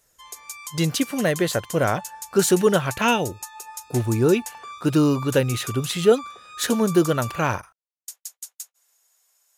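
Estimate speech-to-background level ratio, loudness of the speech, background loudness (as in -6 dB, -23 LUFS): 14.5 dB, -22.0 LUFS, -36.5 LUFS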